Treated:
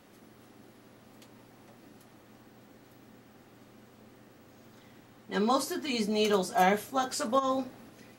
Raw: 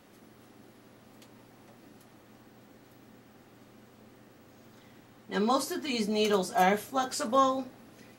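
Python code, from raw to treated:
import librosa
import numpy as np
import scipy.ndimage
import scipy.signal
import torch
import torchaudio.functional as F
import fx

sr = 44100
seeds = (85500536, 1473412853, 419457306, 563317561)

y = fx.over_compress(x, sr, threshold_db=-28.0, ratio=-1.0, at=(7.38, 7.88), fade=0.02)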